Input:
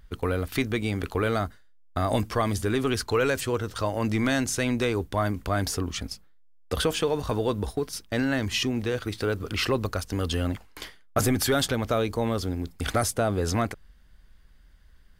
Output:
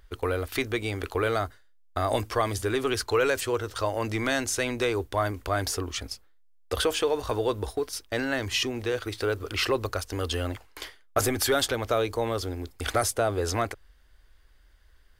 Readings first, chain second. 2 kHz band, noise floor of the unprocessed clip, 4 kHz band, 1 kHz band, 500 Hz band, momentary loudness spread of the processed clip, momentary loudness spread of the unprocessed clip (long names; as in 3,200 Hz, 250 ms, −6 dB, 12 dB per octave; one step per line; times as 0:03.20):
+0.5 dB, −53 dBFS, +0.5 dB, +0.5 dB, +0.5 dB, 8 LU, 7 LU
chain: drawn EQ curve 110 Hz 0 dB, 160 Hz −13 dB, 360 Hz +4 dB
level −3.5 dB